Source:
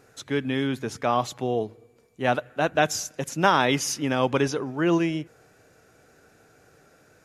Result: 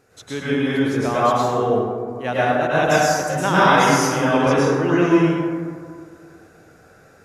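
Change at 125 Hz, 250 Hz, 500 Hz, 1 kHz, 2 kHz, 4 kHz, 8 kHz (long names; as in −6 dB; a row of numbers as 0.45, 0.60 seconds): +7.5, +7.5, +7.5, +7.5, +7.5, +3.5, +3.5 decibels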